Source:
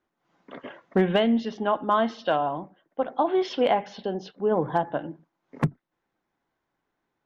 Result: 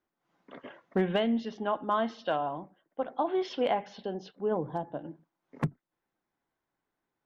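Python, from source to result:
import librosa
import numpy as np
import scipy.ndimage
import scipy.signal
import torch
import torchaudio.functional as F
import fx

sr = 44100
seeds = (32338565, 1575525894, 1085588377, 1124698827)

y = fx.peak_eq(x, sr, hz=1900.0, db=-11.0, octaves=2.2, at=(4.57, 5.05))
y = y * 10.0 ** (-6.0 / 20.0)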